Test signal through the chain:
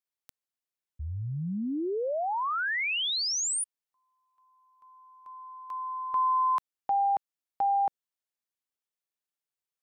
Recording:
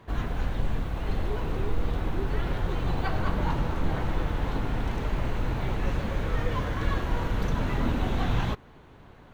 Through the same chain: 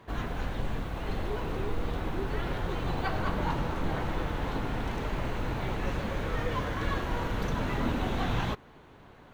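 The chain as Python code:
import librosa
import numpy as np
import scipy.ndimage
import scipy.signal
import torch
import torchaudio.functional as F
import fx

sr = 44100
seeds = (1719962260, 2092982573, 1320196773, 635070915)

y = fx.low_shelf(x, sr, hz=140.0, db=-6.5)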